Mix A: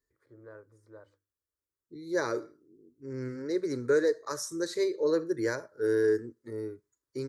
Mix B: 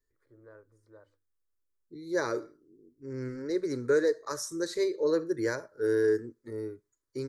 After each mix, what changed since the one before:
first voice -4.0 dB; master: remove high-pass 43 Hz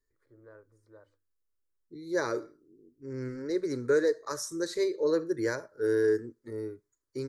no change

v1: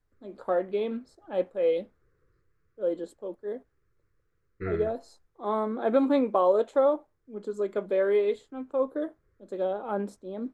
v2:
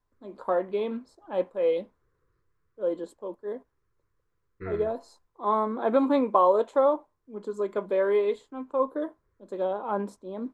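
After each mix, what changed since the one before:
second voice -4.0 dB; master: add peaking EQ 1 kHz +11.5 dB 0.29 oct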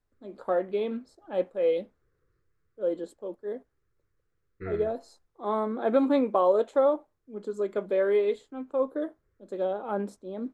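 master: add peaking EQ 1 kHz -11.5 dB 0.29 oct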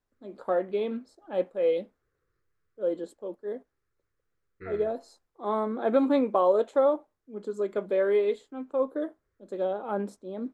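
second voice: add bass shelf 470 Hz -7.5 dB

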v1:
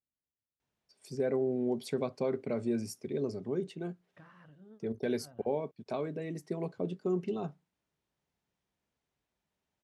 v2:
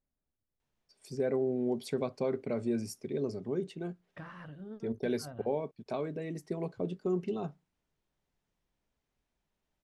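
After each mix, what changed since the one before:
second voice +10.0 dB; master: remove high-pass 66 Hz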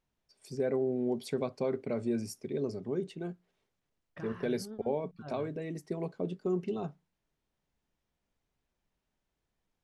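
first voice: entry -0.60 s

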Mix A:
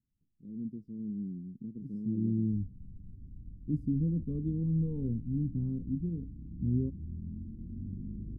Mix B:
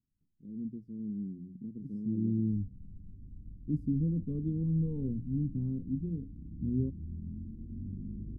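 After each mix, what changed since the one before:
master: add hum notches 60/120/180 Hz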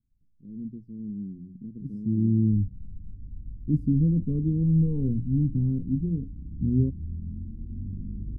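second voice +5.0 dB; master: add bass shelf 110 Hz +11 dB

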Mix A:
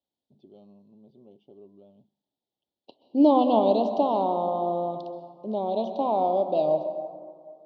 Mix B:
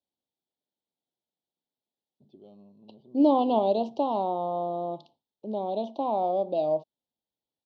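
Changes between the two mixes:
first voice: entry +1.90 s; reverb: off

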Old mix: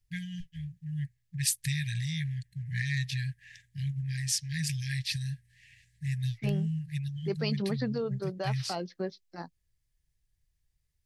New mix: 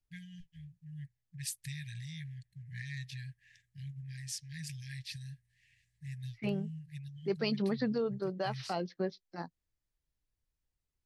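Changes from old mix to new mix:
first voice -11.0 dB; second voice: add distance through air 55 m

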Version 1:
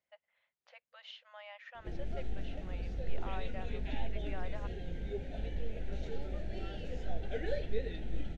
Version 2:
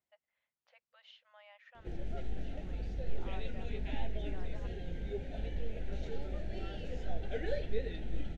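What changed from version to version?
first voice -8.0 dB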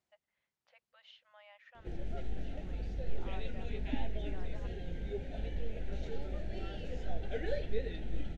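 second voice +5.0 dB; reverb: on, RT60 0.40 s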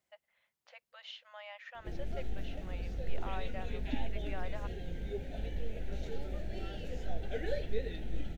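first voice +9.5 dB; master: remove distance through air 54 m

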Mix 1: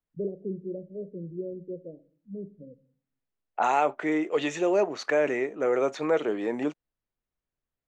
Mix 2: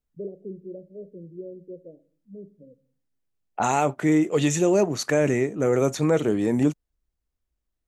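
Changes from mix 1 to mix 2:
first voice: add bass shelf 380 Hz -5.5 dB; second voice: remove band-pass 450–3200 Hz

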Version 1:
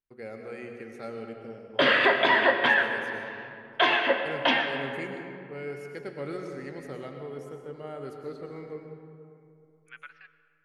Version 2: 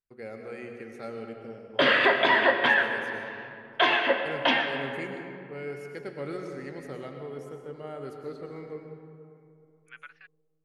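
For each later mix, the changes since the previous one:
second voice: send off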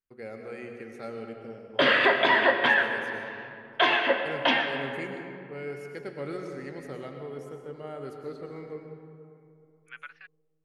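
second voice +3.0 dB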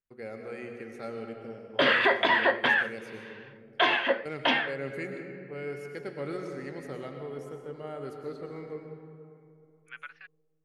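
background: send off

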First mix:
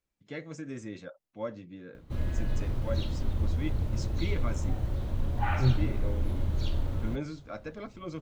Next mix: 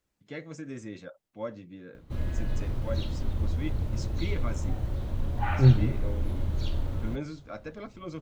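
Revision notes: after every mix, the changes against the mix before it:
second voice +7.5 dB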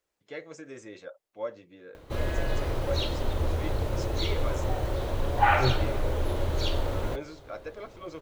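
background +10.5 dB; master: add resonant low shelf 310 Hz -10 dB, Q 1.5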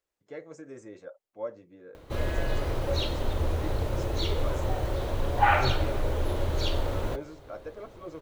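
first voice: add peaking EQ 3.3 kHz -12.5 dB 1.7 oct; second voice -5.0 dB

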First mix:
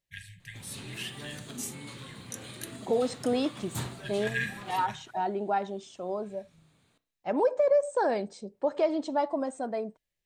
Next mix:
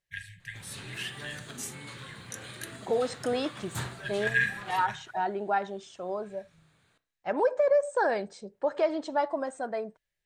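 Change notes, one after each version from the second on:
master: add fifteen-band graphic EQ 250 Hz -6 dB, 1.6 kHz +7 dB, 16 kHz -5 dB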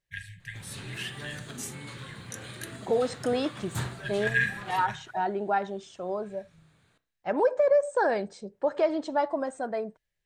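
master: add bass shelf 410 Hz +4.5 dB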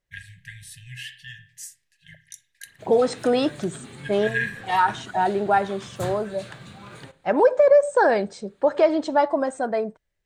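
second voice +7.0 dB; background: entry +2.25 s

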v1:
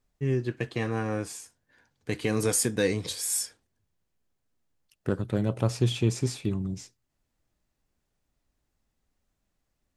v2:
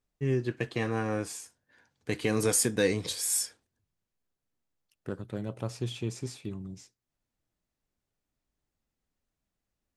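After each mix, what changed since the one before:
second voice -7.5 dB; master: add bass shelf 140 Hz -4 dB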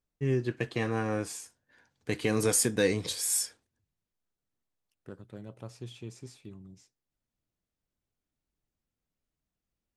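second voice -9.0 dB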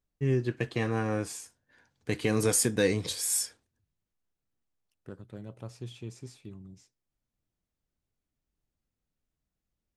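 master: add bass shelf 140 Hz +4 dB

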